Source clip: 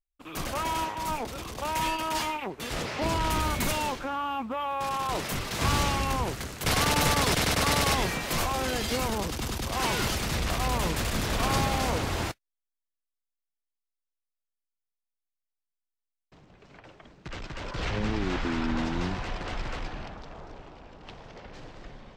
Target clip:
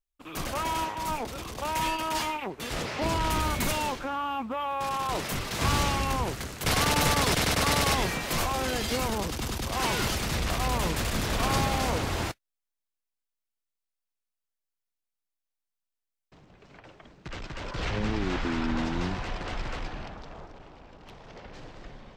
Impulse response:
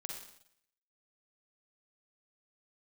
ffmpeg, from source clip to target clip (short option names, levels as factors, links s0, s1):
-filter_complex "[0:a]asettb=1/sr,asplit=3[s0][s1][s2];[s0]atrim=end=20.464[s3];[s1]atrim=start=20.46:end=21.27,asetpts=PTS-STARTPTS,afade=t=in:d=0.004:c=qsin,afade=t=out:st=0.806:d=0.004:c=qsin,aeval=exprs='(tanh(100*val(0)+0.35)-tanh(0.35))/100':c=same[s4];[s2]atrim=start=21.266[s5];[s3][s4]acrossfade=d=0.004:c1=hsin:c2=qsin[s6];[s6][s5]acrossfade=d=0.004:c1=qsin:c2=hsin"